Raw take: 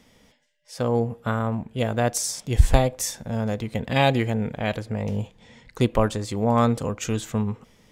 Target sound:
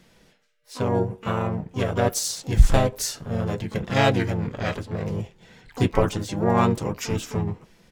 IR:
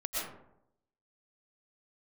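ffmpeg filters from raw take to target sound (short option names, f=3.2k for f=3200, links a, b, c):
-filter_complex "[0:a]asplit=3[a][b][c];[b]asetrate=35002,aresample=44100,atempo=1.25992,volume=-1dB[d];[c]asetrate=88200,aresample=44100,atempo=0.5,volume=-11dB[e];[a][d][e]amix=inputs=3:normalize=0,flanger=delay=5.9:depth=1.2:regen=-55:speed=0.76:shape=sinusoidal,volume=1.5dB"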